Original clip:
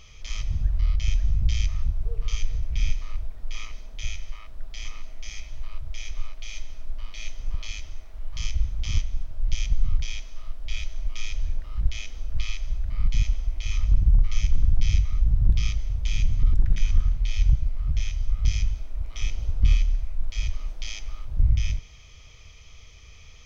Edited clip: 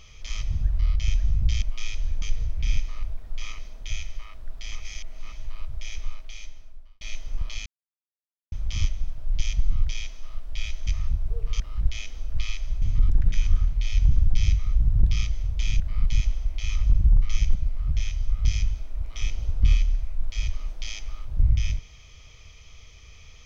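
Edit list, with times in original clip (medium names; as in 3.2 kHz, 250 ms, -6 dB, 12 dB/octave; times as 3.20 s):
1.62–2.35 s: swap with 11.00–11.60 s
4.93–5.45 s: reverse
6.14–7.14 s: fade out
7.79–8.65 s: mute
12.82–14.57 s: swap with 16.26–17.55 s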